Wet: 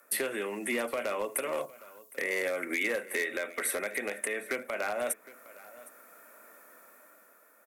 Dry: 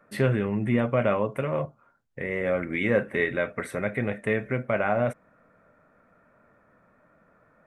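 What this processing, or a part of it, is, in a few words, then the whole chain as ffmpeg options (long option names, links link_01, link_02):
FM broadcast chain: -filter_complex "[0:a]highpass=frequency=71:width=0.5412,highpass=frequency=71:width=1.3066,highpass=frequency=290:width=0.5412,highpass=frequency=290:width=1.3066,dynaudnorm=framelen=180:gausssize=9:maxgain=7.5dB,acrossover=split=190|3300[link_01][link_02][link_03];[link_01]acompressor=threshold=-52dB:ratio=4[link_04];[link_02]acompressor=threshold=-26dB:ratio=4[link_05];[link_03]acompressor=threshold=-56dB:ratio=4[link_06];[link_04][link_05][link_06]amix=inputs=3:normalize=0,aemphasis=mode=production:type=75fm,alimiter=limit=-18.5dB:level=0:latency=1:release=186,asoftclip=type=hard:threshold=-22dB,lowpass=frequency=15000:width=0.5412,lowpass=frequency=15000:width=1.3066,aemphasis=mode=production:type=75fm,aecho=1:1:761:0.1,volume=-2.5dB"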